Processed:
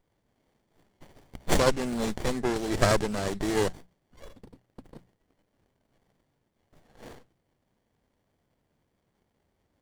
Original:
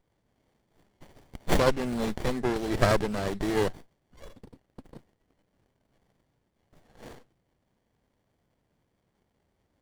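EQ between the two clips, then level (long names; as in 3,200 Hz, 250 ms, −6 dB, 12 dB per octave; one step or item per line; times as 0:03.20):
mains-hum notches 60/120/180 Hz
dynamic equaliser 7,400 Hz, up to +7 dB, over −51 dBFS, Q 0.94
0.0 dB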